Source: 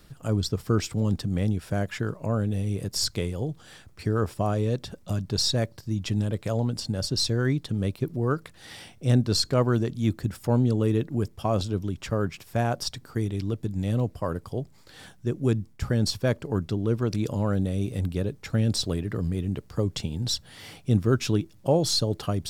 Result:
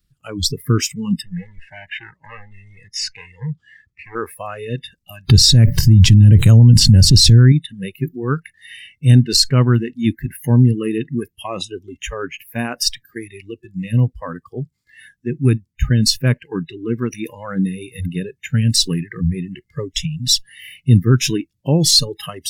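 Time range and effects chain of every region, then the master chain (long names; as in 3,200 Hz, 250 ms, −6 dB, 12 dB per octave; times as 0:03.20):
0:01.22–0:04.15: gain into a clipping stage and back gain 29 dB + high-frequency loss of the air 73 metres
0:05.29–0:07.52: low-shelf EQ 360 Hz +9 dB + envelope flattener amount 70%
whole clip: noise reduction from a noise print of the clip's start 29 dB; guitar amp tone stack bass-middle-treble 6-0-2; boost into a limiter +30 dB; level −1 dB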